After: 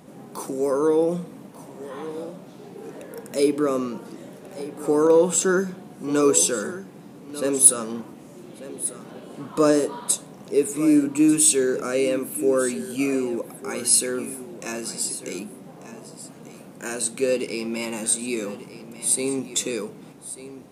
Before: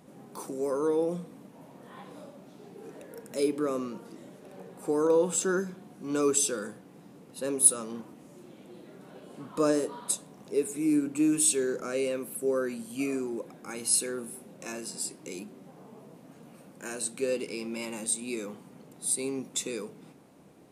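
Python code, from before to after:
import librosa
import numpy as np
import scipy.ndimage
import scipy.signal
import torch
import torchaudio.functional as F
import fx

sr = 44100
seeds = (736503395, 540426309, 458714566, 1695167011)

p1 = np.clip(10.0 ** (17.0 / 20.0) * x, -1.0, 1.0) / 10.0 ** (17.0 / 20.0)
p2 = x + (p1 * 10.0 ** (-10.0 / 20.0))
p3 = p2 + 10.0 ** (-14.5 / 20.0) * np.pad(p2, (int(1192 * sr / 1000.0), 0))[:len(p2)]
y = p3 * 10.0 ** (5.0 / 20.0)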